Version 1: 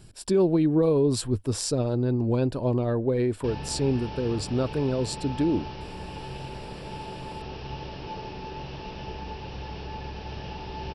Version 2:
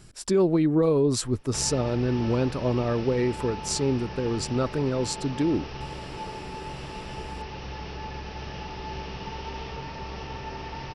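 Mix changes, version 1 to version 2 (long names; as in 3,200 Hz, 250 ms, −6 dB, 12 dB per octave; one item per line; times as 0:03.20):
background: entry −1.90 s
master: add thirty-one-band graphic EQ 100 Hz −4 dB, 1,250 Hz +7 dB, 2,000 Hz +7 dB, 6,300 Hz +9 dB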